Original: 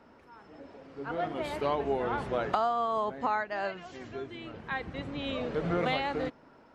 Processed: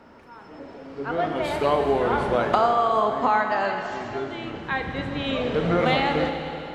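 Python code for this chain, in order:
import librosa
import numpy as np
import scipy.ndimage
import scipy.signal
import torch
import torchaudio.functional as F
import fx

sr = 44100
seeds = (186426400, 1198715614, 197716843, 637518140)

y = fx.rev_schroeder(x, sr, rt60_s=3.1, comb_ms=26, drr_db=4.5)
y = y * librosa.db_to_amplitude(7.5)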